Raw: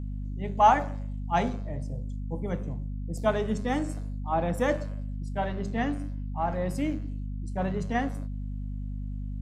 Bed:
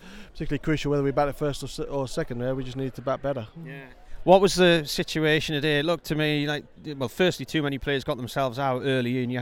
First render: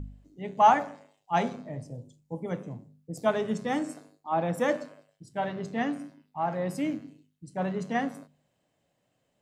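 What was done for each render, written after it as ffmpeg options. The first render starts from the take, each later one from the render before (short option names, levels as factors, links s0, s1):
-af "bandreject=f=50:t=h:w=4,bandreject=f=100:t=h:w=4,bandreject=f=150:t=h:w=4,bandreject=f=200:t=h:w=4,bandreject=f=250:t=h:w=4"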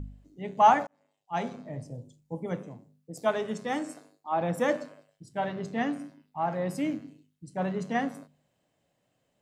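-filter_complex "[0:a]asettb=1/sr,asplit=3[s0][s1][s2];[s0]atrim=end=2.664[s3];[s1]atrim=start=2.66:end=4.41,asetpts=PTS-STARTPTS,afade=t=in:d=0.004:c=qsin,afade=t=out:st=1.746:d=0.004:c=qsin,lowshelf=f=200:g=-10[s4];[s2]atrim=start=4.406[s5];[s3][s4]acrossfade=d=0.004:c1=hsin:c2=qsin[s6];[s6][s5]acrossfade=d=0.004:c1=qsin:c2=hsin,asplit=2[s7][s8];[s7]atrim=end=0.87,asetpts=PTS-STARTPTS,afade=t=out:st=0.866:d=0.004:c=hsin[s9];[s8]atrim=start=0.87,asetpts=PTS-STARTPTS,afade=t=in:d=0.92[s10];[s9][s10]concat=n=2:v=0:a=1"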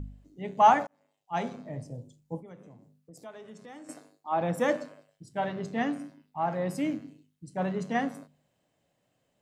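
-filter_complex "[0:a]asettb=1/sr,asplit=3[s0][s1][s2];[s0]atrim=end=2.404[s3];[s1]atrim=start=2.4:end=3.89,asetpts=PTS-STARTPTS,afade=t=in:d=0.004:c=qsin,afade=t=out:st=1.486:d=0.004:c=qsin,acompressor=threshold=0.00282:ratio=2.5:attack=3.2:release=140:knee=1:detection=peak[s4];[s2]atrim=start=3.886[s5];[s3][s4]acrossfade=d=0.004:c1=hsin:c2=qsin[s6];[s6][s5]acrossfade=d=0.004:c1=qsin:c2=hsin"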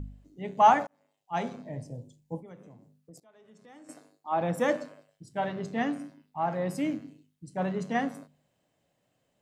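-filter_complex "[0:a]asettb=1/sr,asplit=3[s0][s1][s2];[s0]atrim=end=1.624[s3];[s1]atrim=start=1.62:end=2.41,asetpts=PTS-STARTPTS,afade=t=in:d=0.004:c=qsin,afade=t=out:st=0.786:d=0.004:c=qsin,asuperstop=centerf=1300:order=8:qfactor=3.2[s4];[s2]atrim=start=2.406[s5];[s3][s4]acrossfade=d=0.004:c1=hsin:c2=qsin[s6];[s6][s5]acrossfade=d=0.004:c1=qsin:c2=hsin,asplit=2[s7][s8];[s7]atrim=end=3.2,asetpts=PTS-STARTPTS,afade=t=out:st=3.196:d=0.004:c=hsin:silence=0.105925[s9];[s8]atrim=start=3.2,asetpts=PTS-STARTPTS,afade=t=in:d=1.14:silence=0.105925[s10];[s9][s10]concat=n=2:v=0:a=1"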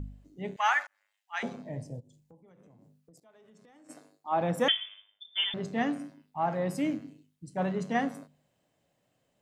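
-filter_complex "[0:a]asettb=1/sr,asplit=3[s0][s1][s2];[s0]atrim=end=0.564[s3];[s1]atrim=start=0.56:end=1.43,asetpts=PTS-STARTPTS,afade=t=in:d=0.004:c=qsin,afade=t=out:st=0.866:d=0.004:c=qsin,highpass=f=1700:t=q:w=2.3[s4];[s2]atrim=start=1.426[s5];[s3][s4]acrossfade=d=0.004:c1=hsin:c2=qsin[s6];[s6][s5]acrossfade=d=0.004:c1=qsin:c2=hsin,asplit=3[s7][s8][s9];[s7]afade=t=out:st=1.99:d=0.02[s10];[s8]acompressor=threshold=0.002:ratio=8:attack=3.2:release=140:knee=1:detection=peak,afade=t=in:st=1.99:d=0.02,afade=t=out:st=3.89:d=0.02[s11];[s9]afade=t=in:st=3.89:d=0.02[s12];[s10][s11][s12]amix=inputs=3:normalize=0,asettb=1/sr,asplit=3[s13][s14][s15];[s13]atrim=end=4.684[s16];[s14]atrim=start=4.68:end=5.54,asetpts=PTS-STARTPTS,afade=t=in:d=0.004:c=qsin,afade=t=out:st=0.856:d=0.004:c=qsin,lowpass=f=3100:t=q:w=0.5098,lowpass=f=3100:t=q:w=0.6013,lowpass=f=3100:t=q:w=0.9,lowpass=f=3100:t=q:w=2.563,afreqshift=-3700[s17];[s15]atrim=start=5.536[s18];[s16][s17]acrossfade=d=0.004:c1=hsin:c2=qsin[s19];[s19][s18]acrossfade=d=0.004:c1=qsin:c2=hsin"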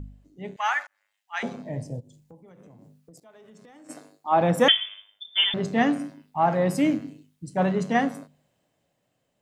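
-af "dynaudnorm=f=280:g=11:m=2.51"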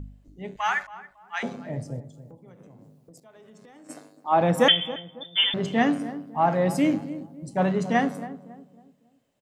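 -filter_complex "[0:a]asplit=2[s0][s1];[s1]adelay=276,lowpass=f=900:p=1,volume=0.224,asplit=2[s2][s3];[s3]adelay=276,lowpass=f=900:p=1,volume=0.4,asplit=2[s4][s5];[s5]adelay=276,lowpass=f=900:p=1,volume=0.4,asplit=2[s6][s7];[s7]adelay=276,lowpass=f=900:p=1,volume=0.4[s8];[s0][s2][s4][s6][s8]amix=inputs=5:normalize=0"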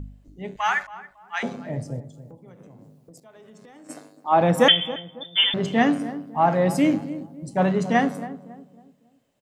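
-af "volume=1.33"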